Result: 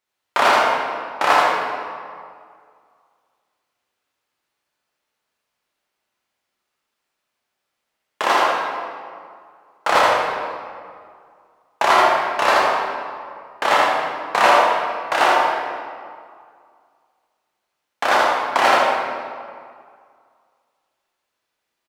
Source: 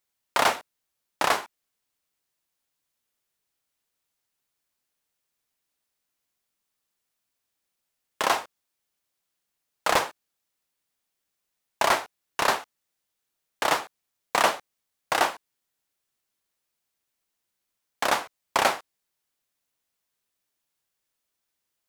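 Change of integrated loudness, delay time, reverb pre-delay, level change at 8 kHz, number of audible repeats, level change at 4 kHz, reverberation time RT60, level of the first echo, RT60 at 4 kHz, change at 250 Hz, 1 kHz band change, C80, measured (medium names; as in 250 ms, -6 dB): +8.0 dB, 79 ms, 8 ms, 0.0 dB, 1, +6.0 dB, 2.1 s, -3.5 dB, 1.3 s, +8.0 dB, +11.0 dB, 0.0 dB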